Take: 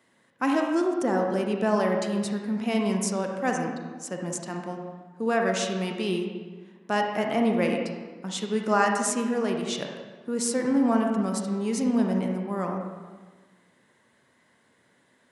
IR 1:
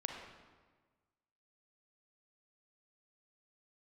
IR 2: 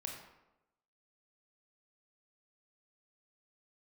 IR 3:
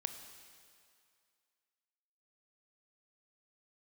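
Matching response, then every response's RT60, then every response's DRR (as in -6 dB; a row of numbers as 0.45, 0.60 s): 1; 1.4, 0.95, 2.3 s; 2.0, 0.0, 7.5 dB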